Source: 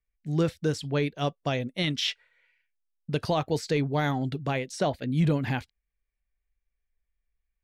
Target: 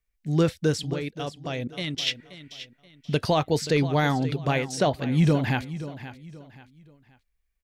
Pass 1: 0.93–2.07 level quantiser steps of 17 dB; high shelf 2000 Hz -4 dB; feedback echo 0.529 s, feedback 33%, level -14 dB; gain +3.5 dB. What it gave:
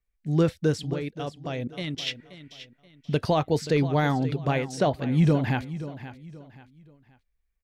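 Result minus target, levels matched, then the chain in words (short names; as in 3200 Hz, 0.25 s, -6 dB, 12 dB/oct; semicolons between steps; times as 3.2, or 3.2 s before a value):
4000 Hz band -4.0 dB
0.93–2.07 level quantiser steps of 17 dB; high shelf 2000 Hz +2 dB; feedback echo 0.529 s, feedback 33%, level -14 dB; gain +3.5 dB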